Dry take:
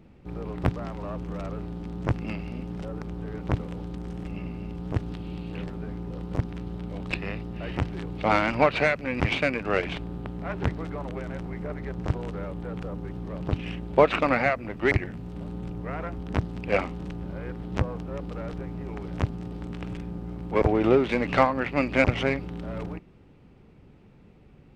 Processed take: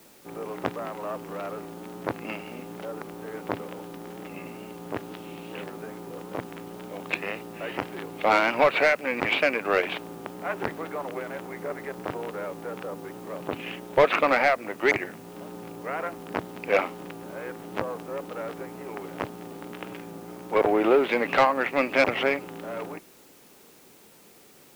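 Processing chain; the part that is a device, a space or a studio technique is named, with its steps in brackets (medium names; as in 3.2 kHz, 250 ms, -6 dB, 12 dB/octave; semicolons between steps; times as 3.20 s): tape answering machine (band-pass 390–3400 Hz; saturation -16 dBFS, distortion -13 dB; wow and flutter; white noise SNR 27 dB); trim +5 dB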